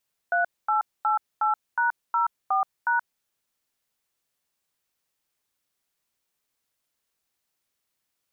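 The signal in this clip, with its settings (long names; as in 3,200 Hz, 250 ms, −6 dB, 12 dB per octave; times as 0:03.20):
touch tones "3888#04#", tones 127 ms, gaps 237 ms, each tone −22.5 dBFS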